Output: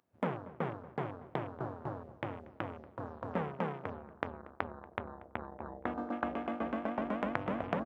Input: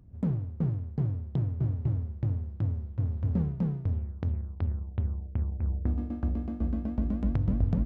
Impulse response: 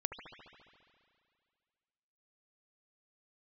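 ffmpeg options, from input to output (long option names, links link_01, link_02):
-filter_complex "[0:a]apsyclip=18.5dB,highpass=840,afwtdn=0.00708,asplit=2[link_01][link_02];[link_02]adelay=235,lowpass=frequency=1500:poles=1,volume=-17.5dB,asplit=2[link_03][link_04];[link_04]adelay=235,lowpass=frequency=1500:poles=1,volume=0.41,asplit=2[link_05][link_06];[link_06]adelay=235,lowpass=frequency=1500:poles=1,volume=0.41[link_07];[link_01][link_03][link_05][link_07]amix=inputs=4:normalize=0,volume=-2dB"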